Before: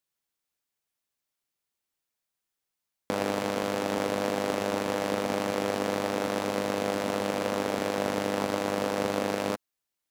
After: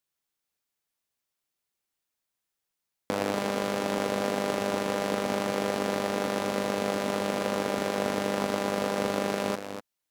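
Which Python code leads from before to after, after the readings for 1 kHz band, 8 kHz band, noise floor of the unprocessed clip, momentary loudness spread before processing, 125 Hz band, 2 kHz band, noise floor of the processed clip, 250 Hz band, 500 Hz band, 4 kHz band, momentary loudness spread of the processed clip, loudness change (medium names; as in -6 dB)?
+0.5 dB, +0.5 dB, under -85 dBFS, 1 LU, +1.0 dB, +0.5 dB, -85 dBFS, +0.5 dB, 0.0 dB, +0.5 dB, 1 LU, +0.5 dB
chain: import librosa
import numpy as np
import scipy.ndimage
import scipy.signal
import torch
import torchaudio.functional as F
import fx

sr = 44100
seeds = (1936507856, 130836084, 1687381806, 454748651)

y = x + 10.0 ** (-8.5 / 20.0) * np.pad(x, (int(245 * sr / 1000.0), 0))[:len(x)]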